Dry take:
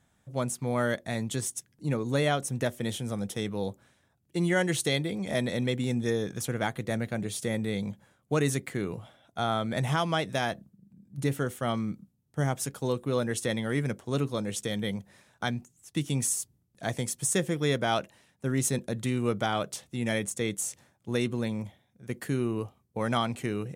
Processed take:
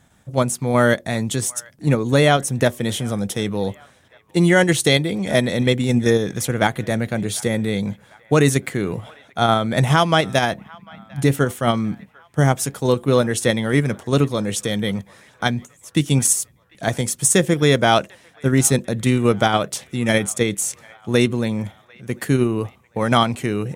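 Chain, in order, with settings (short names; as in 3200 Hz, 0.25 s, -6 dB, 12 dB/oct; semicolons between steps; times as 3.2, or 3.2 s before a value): in parallel at 0 dB: level quantiser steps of 14 dB; on the sum: band-limited delay 0.747 s, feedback 54%, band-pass 1500 Hz, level -23 dB; gain +7 dB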